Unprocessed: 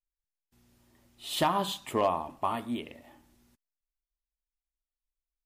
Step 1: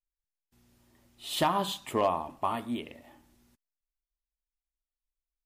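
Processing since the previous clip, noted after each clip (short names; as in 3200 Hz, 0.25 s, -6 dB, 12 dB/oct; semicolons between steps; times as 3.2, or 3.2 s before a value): nothing audible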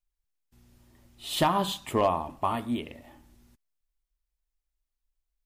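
low shelf 110 Hz +10 dB; gain +2 dB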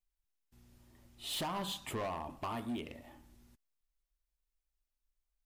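compressor 2.5:1, threshold -30 dBFS, peak gain reduction 8 dB; hard clip -30.5 dBFS, distortion -9 dB; gain -3.5 dB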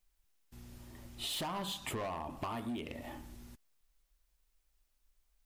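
compressor, threshold -48 dBFS, peak gain reduction 11.5 dB; gain +10.5 dB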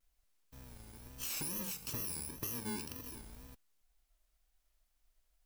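FFT order left unsorted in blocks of 64 samples; wow and flutter 140 cents; gain -1 dB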